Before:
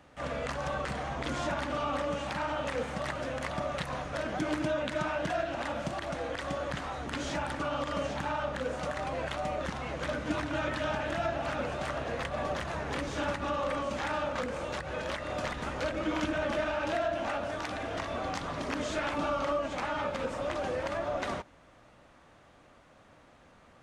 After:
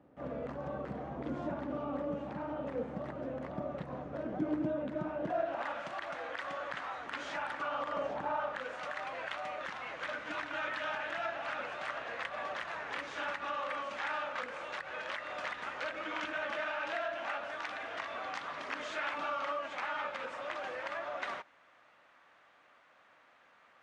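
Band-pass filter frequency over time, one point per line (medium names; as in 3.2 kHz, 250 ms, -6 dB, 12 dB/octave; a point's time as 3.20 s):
band-pass filter, Q 0.89
5.16 s 290 Hz
5.75 s 1.5 kHz
7.63 s 1.5 kHz
8.23 s 610 Hz
8.66 s 1.8 kHz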